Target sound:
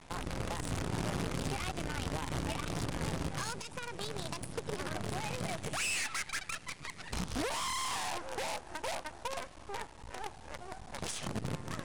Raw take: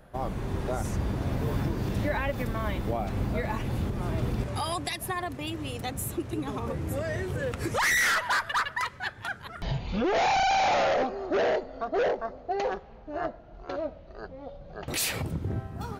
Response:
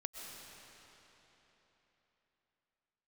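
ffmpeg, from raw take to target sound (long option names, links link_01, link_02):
-filter_complex "[0:a]highshelf=frequency=5400:gain=5,acompressor=threshold=-34dB:ratio=2,acrossover=split=170|6200[link_01][link_02][link_03];[link_02]alimiter=level_in=3.5dB:limit=-24dB:level=0:latency=1:release=261,volume=-3.5dB[link_04];[link_01][link_04][link_03]amix=inputs=3:normalize=0,aeval=exprs='val(0)+0.00126*(sin(2*PI*60*n/s)+sin(2*PI*2*60*n/s)/2+sin(2*PI*3*60*n/s)/3+sin(2*PI*4*60*n/s)/4+sin(2*PI*5*60*n/s)/5)':channel_layout=same,aresample=16000,acrusher=bits=6:dc=4:mix=0:aa=0.000001,aresample=44100,asoftclip=type=tanh:threshold=-26dB,asetrate=59535,aresample=44100"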